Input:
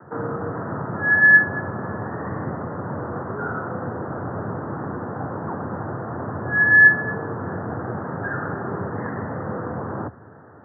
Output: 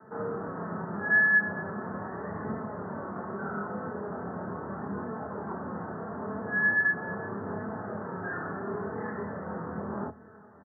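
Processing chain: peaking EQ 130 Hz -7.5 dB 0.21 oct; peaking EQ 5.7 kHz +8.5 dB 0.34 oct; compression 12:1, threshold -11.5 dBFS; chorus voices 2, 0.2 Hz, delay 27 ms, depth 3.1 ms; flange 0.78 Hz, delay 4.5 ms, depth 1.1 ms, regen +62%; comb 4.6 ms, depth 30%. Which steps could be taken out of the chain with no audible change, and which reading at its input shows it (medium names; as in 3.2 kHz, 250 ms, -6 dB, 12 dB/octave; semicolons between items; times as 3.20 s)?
peaking EQ 5.7 kHz: input has nothing above 1.8 kHz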